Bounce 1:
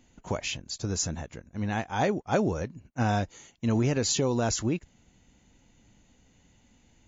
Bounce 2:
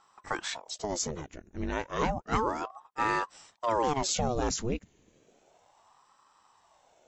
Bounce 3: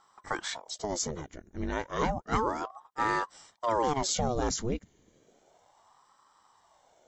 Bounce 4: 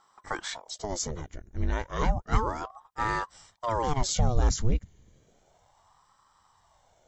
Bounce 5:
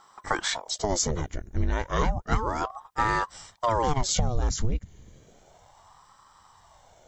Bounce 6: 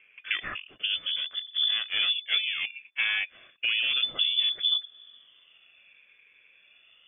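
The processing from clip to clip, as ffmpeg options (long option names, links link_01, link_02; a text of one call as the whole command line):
ffmpeg -i in.wav -af "aeval=exprs='val(0)*sin(2*PI*600*n/s+600*0.8/0.32*sin(2*PI*0.32*n/s))':channel_layout=same" out.wav
ffmpeg -i in.wav -af "bandreject=frequency=2600:width=6.4" out.wav
ffmpeg -i in.wav -af "asubboost=boost=6.5:cutoff=120" out.wav
ffmpeg -i in.wav -af "acompressor=threshold=-28dB:ratio=12,volume=8dB" out.wav
ffmpeg -i in.wav -af "lowpass=frequency=3000:width_type=q:width=0.5098,lowpass=frequency=3000:width_type=q:width=0.6013,lowpass=frequency=3000:width_type=q:width=0.9,lowpass=frequency=3000:width_type=q:width=2.563,afreqshift=-3500,volume=-2.5dB" out.wav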